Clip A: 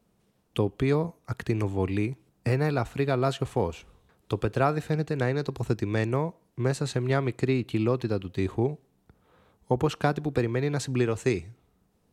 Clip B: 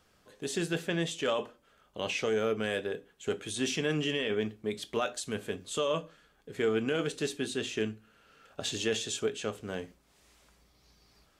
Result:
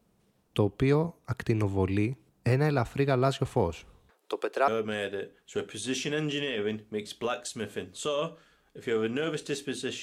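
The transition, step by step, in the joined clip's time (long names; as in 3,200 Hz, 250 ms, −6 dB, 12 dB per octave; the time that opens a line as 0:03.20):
clip A
0:04.10–0:04.68: high-pass filter 380 Hz 24 dB per octave
0:04.68: continue with clip B from 0:02.40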